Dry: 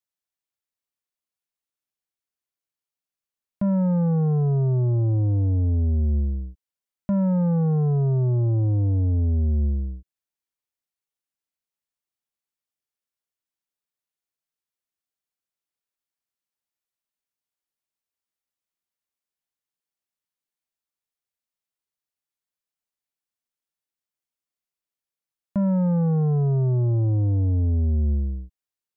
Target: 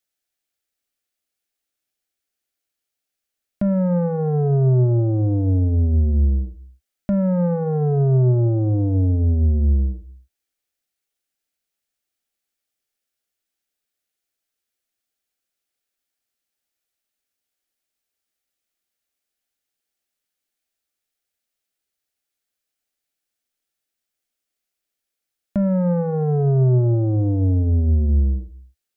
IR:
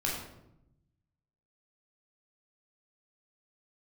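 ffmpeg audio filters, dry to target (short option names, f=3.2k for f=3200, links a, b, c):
-filter_complex "[0:a]equalizer=f=100:t=o:w=0.33:g=-8,equalizer=f=160:t=o:w=0.33:g=-12,equalizer=f=1k:t=o:w=0.33:g=-12,alimiter=limit=-21.5dB:level=0:latency=1:release=51,asplit=2[a][b];[1:a]atrim=start_sample=2205,afade=t=out:st=0.31:d=0.01,atrim=end_sample=14112[c];[b][c]afir=irnorm=-1:irlink=0,volume=-22dB[d];[a][d]amix=inputs=2:normalize=0,volume=8dB"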